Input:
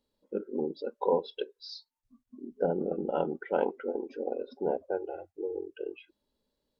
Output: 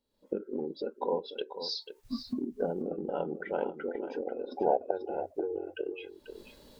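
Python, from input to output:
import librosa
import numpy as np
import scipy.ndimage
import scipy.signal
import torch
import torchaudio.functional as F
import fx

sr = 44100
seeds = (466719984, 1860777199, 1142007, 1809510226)

y = fx.recorder_agc(x, sr, target_db=-22.0, rise_db_per_s=49.0, max_gain_db=30)
y = fx.peak_eq(y, sr, hz=750.0, db=14.5, octaves=1.1, at=(4.43, 4.91))
y = y + 10.0 ** (-10.5 / 20.0) * np.pad(y, (int(490 * sr / 1000.0), 0))[:len(y)]
y = y * librosa.db_to_amplitude(-4.5)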